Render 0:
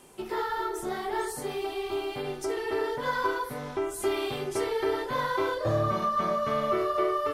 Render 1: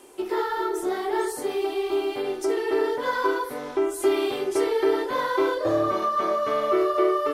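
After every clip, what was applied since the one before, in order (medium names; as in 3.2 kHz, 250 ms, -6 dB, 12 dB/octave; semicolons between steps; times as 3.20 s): resonant low shelf 240 Hz -8.5 dB, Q 3; trim +2.5 dB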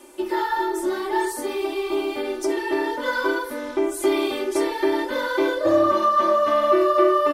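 comb 3.4 ms, depth 99%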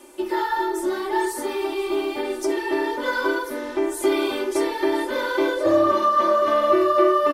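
delay 1037 ms -14.5 dB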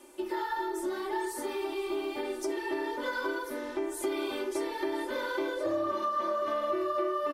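compression 2.5:1, threshold -23 dBFS, peak gain reduction 7.5 dB; trim -7 dB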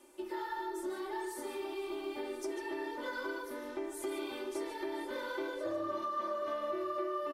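delay 146 ms -10 dB; trim -6.5 dB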